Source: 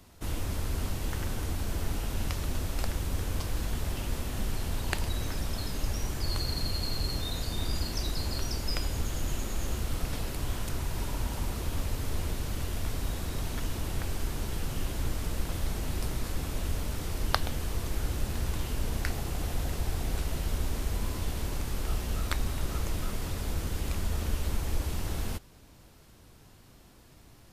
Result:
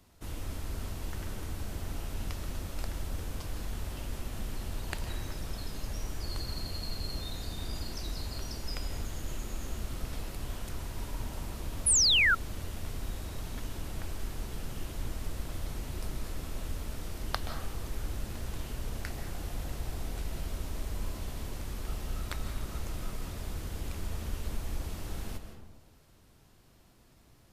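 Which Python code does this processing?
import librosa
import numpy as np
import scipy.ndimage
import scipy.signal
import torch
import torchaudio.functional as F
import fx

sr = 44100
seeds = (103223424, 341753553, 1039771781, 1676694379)

y = fx.rev_freeverb(x, sr, rt60_s=1.2, hf_ratio=0.4, predelay_ms=115, drr_db=6.5)
y = fx.spec_paint(y, sr, seeds[0], shape='fall', start_s=11.86, length_s=0.49, low_hz=1300.0, high_hz=11000.0, level_db=-17.0)
y = F.gain(torch.from_numpy(y), -6.5).numpy()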